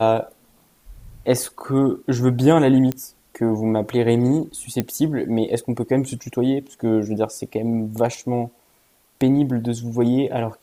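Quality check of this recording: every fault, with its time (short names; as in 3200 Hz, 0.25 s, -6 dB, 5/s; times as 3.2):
2.92 pop -11 dBFS
4.8 pop -8 dBFS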